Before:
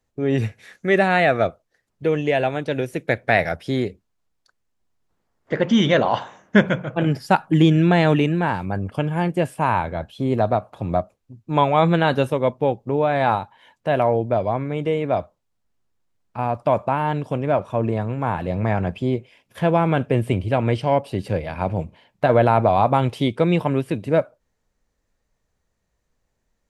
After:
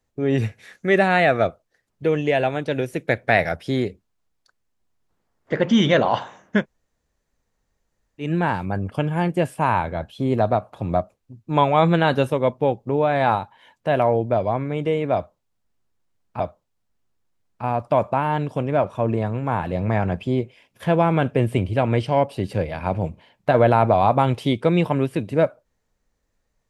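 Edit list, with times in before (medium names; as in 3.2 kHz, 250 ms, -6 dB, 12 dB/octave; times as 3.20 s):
6.58–8.26 s: room tone, crossfade 0.16 s
15.15–16.40 s: loop, 2 plays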